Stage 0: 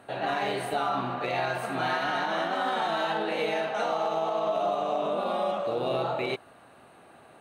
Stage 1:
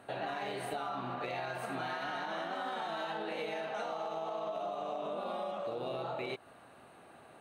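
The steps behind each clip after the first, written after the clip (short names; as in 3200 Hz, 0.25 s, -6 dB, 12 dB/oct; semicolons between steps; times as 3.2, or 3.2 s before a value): compressor, threshold -32 dBFS, peak gain reduction 8.5 dB; gain -3 dB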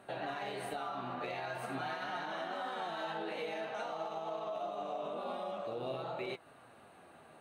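flange 0.48 Hz, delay 5 ms, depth 8 ms, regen +59%; gain +2.5 dB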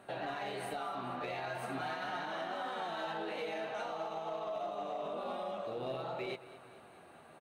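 in parallel at -6 dB: hard clip -36 dBFS, distortion -15 dB; on the sum: feedback echo 0.219 s, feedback 58%, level -16.5 dB; gain -3 dB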